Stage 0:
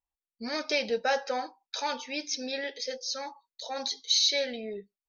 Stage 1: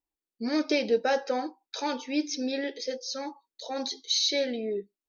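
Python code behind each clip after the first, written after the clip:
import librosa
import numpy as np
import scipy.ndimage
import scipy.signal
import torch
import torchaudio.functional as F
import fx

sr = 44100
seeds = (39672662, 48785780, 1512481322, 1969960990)

y = fx.peak_eq(x, sr, hz=320.0, db=15.0, octaves=0.98)
y = y * librosa.db_to_amplitude(-2.0)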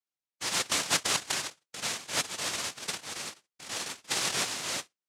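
y = fx.noise_vocoder(x, sr, seeds[0], bands=1)
y = y * librosa.db_to_amplitude(-3.5)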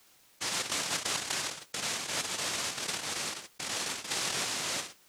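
y = fx.env_flatten(x, sr, amount_pct=70)
y = y * librosa.db_to_amplitude(-7.5)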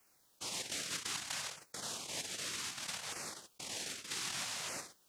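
y = fx.filter_lfo_notch(x, sr, shape='saw_down', hz=0.64, low_hz=260.0, high_hz=3900.0, q=1.2)
y = y * librosa.db_to_amplitude(-7.0)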